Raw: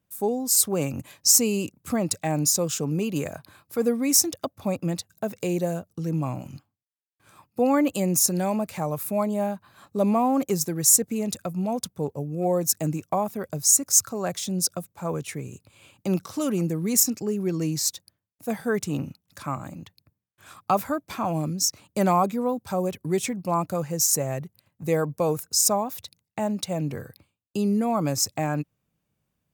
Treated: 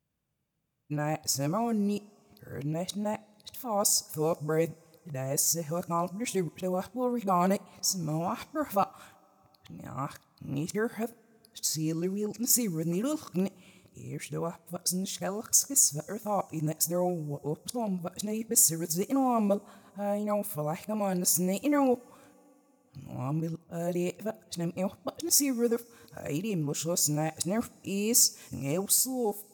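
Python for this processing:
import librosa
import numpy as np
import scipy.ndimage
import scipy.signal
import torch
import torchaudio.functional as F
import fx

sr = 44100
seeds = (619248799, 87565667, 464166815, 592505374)

y = x[::-1].copy()
y = fx.rev_double_slope(y, sr, seeds[0], early_s=0.28, late_s=3.3, knee_db=-20, drr_db=16.0)
y = y * 10.0 ** (-5.0 / 20.0)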